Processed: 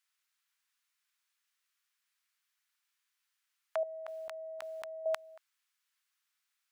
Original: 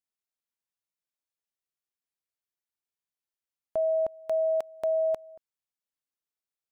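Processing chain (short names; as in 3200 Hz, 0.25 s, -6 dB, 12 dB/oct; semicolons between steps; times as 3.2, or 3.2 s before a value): HPF 1300 Hz 24 dB/oct; tilt -2.5 dB/oct; 3.83–5.06 negative-ratio compressor -60 dBFS, ratio -1; gain +17.5 dB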